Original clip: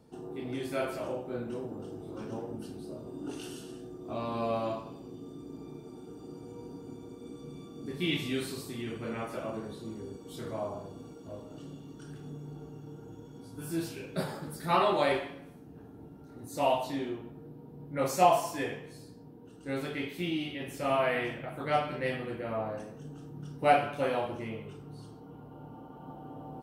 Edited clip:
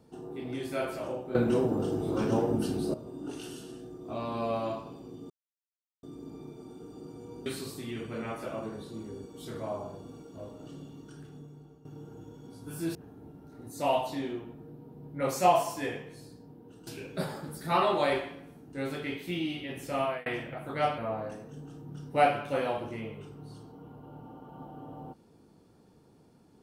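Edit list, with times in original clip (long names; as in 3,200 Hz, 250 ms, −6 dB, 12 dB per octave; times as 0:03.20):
0:01.35–0:02.94: clip gain +11.5 dB
0:05.30: splice in silence 0.73 s
0:06.73–0:08.37: remove
0:11.83–0:12.76: fade out, to −13 dB
0:13.86–0:15.72: move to 0:19.64
0:20.79–0:21.17: fade out equal-power
0:21.89–0:22.46: remove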